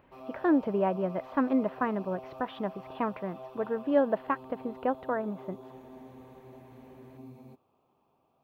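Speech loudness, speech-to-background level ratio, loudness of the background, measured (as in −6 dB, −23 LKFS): −31.0 LKFS, 16.5 dB, −47.5 LKFS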